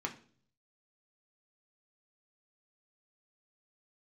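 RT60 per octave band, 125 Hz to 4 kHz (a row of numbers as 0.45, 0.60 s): 0.90, 0.65, 0.55, 0.40, 0.40, 0.45 s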